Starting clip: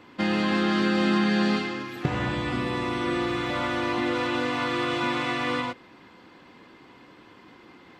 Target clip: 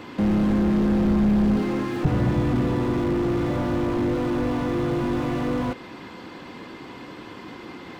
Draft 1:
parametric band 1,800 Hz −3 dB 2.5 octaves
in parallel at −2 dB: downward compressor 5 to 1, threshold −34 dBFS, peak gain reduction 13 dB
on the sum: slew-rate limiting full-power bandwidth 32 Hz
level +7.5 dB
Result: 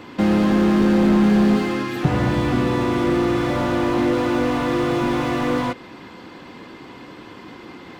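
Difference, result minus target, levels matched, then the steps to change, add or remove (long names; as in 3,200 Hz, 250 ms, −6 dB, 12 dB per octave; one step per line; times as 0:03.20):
slew-rate limiting: distortion −8 dB
change: slew-rate limiting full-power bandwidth 13.5 Hz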